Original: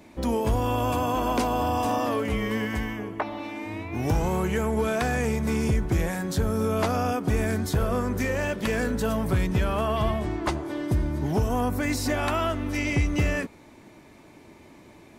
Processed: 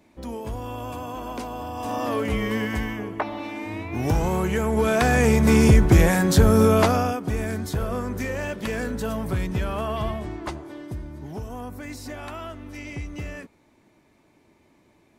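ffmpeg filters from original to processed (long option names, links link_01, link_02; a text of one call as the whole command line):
ffmpeg -i in.wav -af "volume=9.5dB,afade=type=in:start_time=1.75:duration=0.47:silence=0.316228,afade=type=in:start_time=4.65:duration=0.92:silence=0.421697,afade=type=out:start_time=6.61:duration=0.57:silence=0.266073,afade=type=out:start_time=9.97:duration=1.04:silence=0.398107" out.wav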